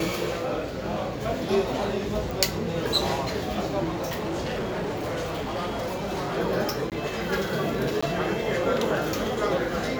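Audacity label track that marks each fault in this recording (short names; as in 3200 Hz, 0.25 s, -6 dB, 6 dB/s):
2.310000	2.310000	pop
3.880000	6.380000	clipped -26 dBFS
6.900000	6.920000	gap 18 ms
8.010000	8.030000	gap 15 ms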